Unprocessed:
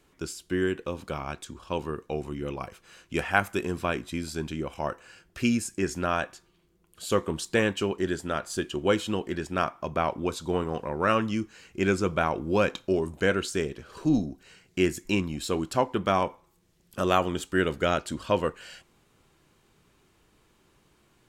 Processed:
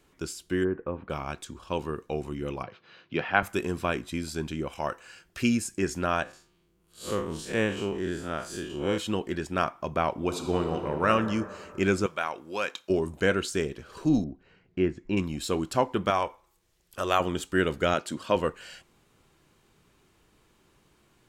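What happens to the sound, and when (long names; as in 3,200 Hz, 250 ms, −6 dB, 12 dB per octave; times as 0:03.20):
0:00.63–0:01.09: low-pass filter 1,200 Hz → 2,500 Hz 24 dB per octave
0:02.63–0:03.43: elliptic band-pass filter 110–4,200 Hz
0:04.68–0:05.43: tilt shelving filter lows −3 dB, about 770 Hz
0:06.23–0:08.98: spectrum smeared in time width 110 ms
0:10.11–0:11.07: thrown reverb, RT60 2.3 s, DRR 5 dB
0:12.06–0:12.90: high-pass filter 1,300 Hz 6 dB per octave
0:14.24–0:15.17: head-to-tape spacing loss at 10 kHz 37 dB
0:16.10–0:17.20: parametric band 190 Hz −12 dB 1.7 octaves
0:17.94–0:18.36: high-pass filter 150 Hz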